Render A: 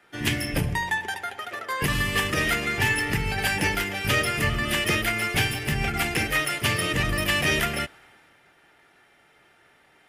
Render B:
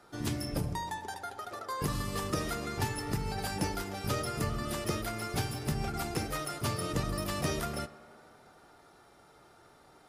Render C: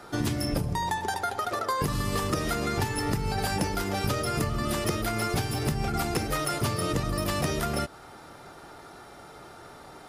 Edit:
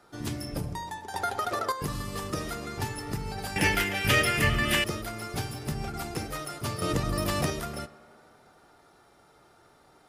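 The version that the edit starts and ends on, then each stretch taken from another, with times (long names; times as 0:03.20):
B
0:01.14–0:01.72: punch in from C
0:03.56–0:04.84: punch in from A
0:06.82–0:07.50: punch in from C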